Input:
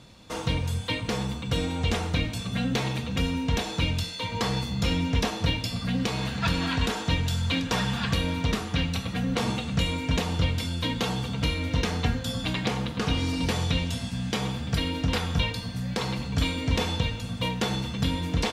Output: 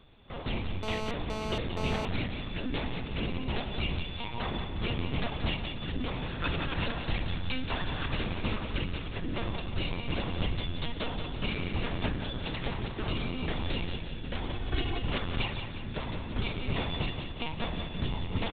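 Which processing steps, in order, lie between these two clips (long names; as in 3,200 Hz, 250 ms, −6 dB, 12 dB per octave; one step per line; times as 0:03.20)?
mains-hum notches 60/120/180/240/300/360/420 Hz
linear-prediction vocoder at 8 kHz pitch kept
0:14.53–0:14.99: comb filter 2.7 ms, depth 85%
repeating echo 179 ms, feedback 52%, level −8 dB
0:00.83–0:02.05: phone interference −31 dBFS
level −5.5 dB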